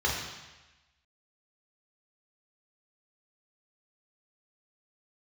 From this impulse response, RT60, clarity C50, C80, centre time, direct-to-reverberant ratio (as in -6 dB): 1.1 s, 2.5 dB, 4.5 dB, 59 ms, -4.5 dB